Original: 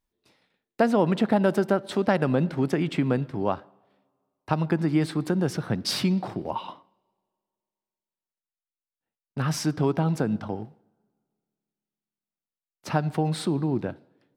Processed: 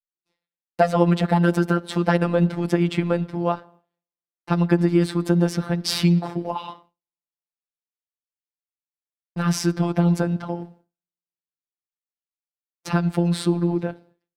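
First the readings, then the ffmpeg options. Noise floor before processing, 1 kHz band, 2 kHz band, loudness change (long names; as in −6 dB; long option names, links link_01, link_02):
below −85 dBFS, +3.0 dB, +3.5 dB, +4.0 dB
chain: -af "afftfilt=real='hypot(re,im)*cos(PI*b)':imag='0':win_size=1024:overlap=0.75,agate=range=-33dB:threshold=-54dB:ratio=3:detection=peak,volume=7dB"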